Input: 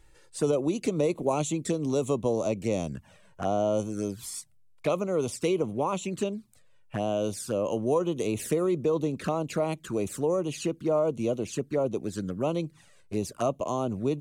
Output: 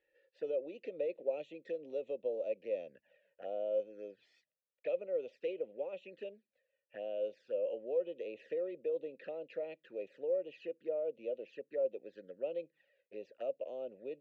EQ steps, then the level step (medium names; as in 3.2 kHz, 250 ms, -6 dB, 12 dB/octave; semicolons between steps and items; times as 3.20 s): vowel filter e; low-pass 4.5 kHz 24 dB/octave; peaking EQ 100 Hz -12 dB 1.3 oct; -2.5 dB